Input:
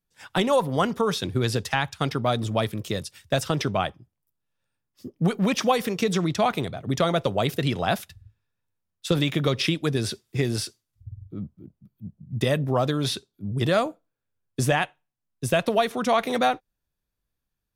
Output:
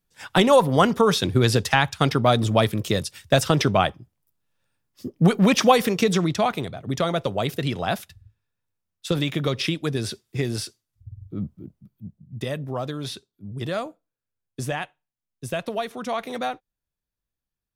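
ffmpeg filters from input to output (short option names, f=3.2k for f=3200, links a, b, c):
-af "volume=12.5dB,afade=t=out:st=5.75:d=0.82:silence=0.473151,afade=t=in:st=11.14:d=0.38:silence=0.446684,afade=t=out:st=11.52:d=0.79:silence=0.251189"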